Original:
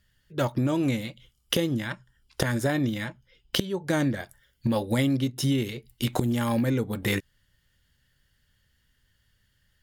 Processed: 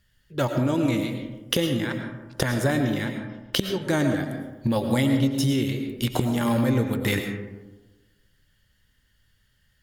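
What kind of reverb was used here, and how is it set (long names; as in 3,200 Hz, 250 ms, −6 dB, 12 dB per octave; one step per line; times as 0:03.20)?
comb and all-pass reverb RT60 1.2 s, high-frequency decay 0.35×, pre-delay 70 ms, DRR 5 dB
level +1.5 dB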